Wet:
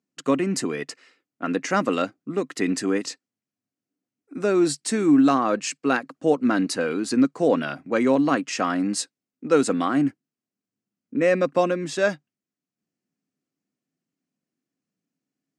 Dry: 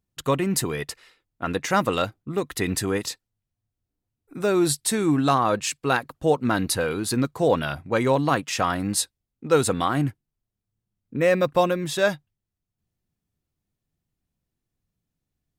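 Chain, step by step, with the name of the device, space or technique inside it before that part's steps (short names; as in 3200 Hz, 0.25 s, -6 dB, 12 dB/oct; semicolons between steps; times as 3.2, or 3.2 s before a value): television speaker (speaker cabinet 180–7900 Hz, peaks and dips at 270 Hz +8 dB, 910 Hz -6 dB, 3600 Hz -8 dB)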